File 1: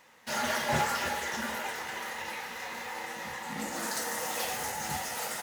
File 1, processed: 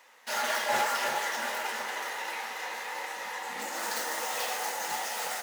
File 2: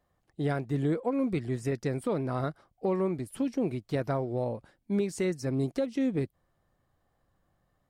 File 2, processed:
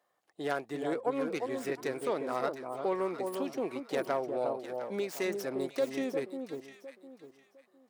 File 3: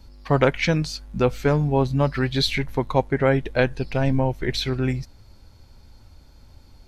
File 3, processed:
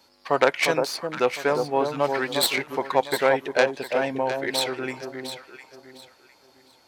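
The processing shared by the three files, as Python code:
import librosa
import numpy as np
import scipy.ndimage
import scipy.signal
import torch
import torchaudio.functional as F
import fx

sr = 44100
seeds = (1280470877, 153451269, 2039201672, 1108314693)

y = fx.tracing_dist(x, sr, depth_ms=0.1)
y = scipy.signal.sosfilt(scipy.signal.butter(2, 470.0, 'highpass', fs=sr, output='sos'), y)
y = fx.echo_alternate(y, sr, ms=353, hz=1100.0, feedback_pct=50, wet_db=-4.5)
y = F.gain(torch.from_numpy(y), 1.5).numpy()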